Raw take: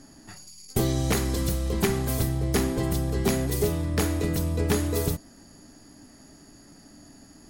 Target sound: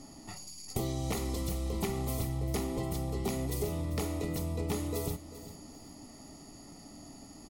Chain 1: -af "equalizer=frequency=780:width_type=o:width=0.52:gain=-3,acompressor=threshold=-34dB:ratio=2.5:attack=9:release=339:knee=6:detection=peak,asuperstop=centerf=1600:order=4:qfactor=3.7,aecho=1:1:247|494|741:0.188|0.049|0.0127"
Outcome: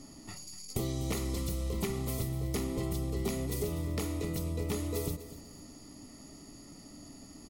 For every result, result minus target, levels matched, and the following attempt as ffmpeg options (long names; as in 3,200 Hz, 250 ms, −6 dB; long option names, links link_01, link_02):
echo 147 ms early; 1,000 Hz band −4.0 dB
-af "equalizer=frequency=780:width_type=o:width=0.52:gain=-3,acompressor=threshold=-34dB:ratio=2.5:attack=9:release=339:knee=6:detection=peak,asuperstop=centerf=1600:order=4:qfactor=3.7,aecho=1:1:394|788|1182:0.188|0.049|0.0127"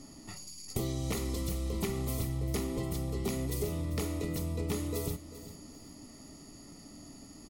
1,000 Hz band −4.0 dB
-af "equalizer=frequency=780:width_type=o:width=0.52:gain=4,acompressor=threshold=-34dB:ratio=2.5:attack=9:release=339:knee=6:detection=peak,asuperstop=centerf=1600:order=4:qfactor=3.7,aecho=1:1:394|788|1182:0.188|0.049|0.0127"